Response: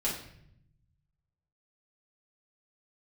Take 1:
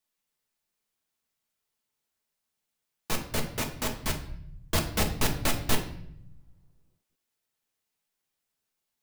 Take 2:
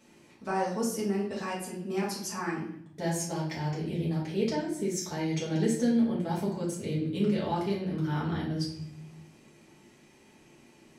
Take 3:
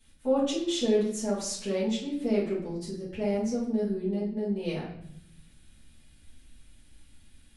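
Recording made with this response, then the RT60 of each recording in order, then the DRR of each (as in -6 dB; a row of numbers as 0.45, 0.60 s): 2; 0.70, 0.70, 0.70 s; 3.0, -6.5, -10.5 dB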